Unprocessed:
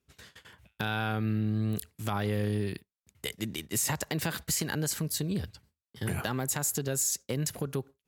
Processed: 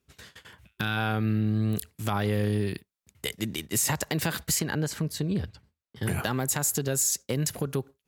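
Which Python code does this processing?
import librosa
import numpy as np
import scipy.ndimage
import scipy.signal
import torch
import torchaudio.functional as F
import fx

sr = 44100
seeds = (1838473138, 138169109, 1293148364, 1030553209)

y = fx.spec_box(x, sr, start_s=0.62, length_s=0.35, low_hz=370.0, high_hz=1000.0, gain_db=-6)
y = fx.lowpass(y, sr, hz=2800.0, slope=6, at=(4.59, 6.03))
y = y * 10.0 ** (3.5 / 20.0)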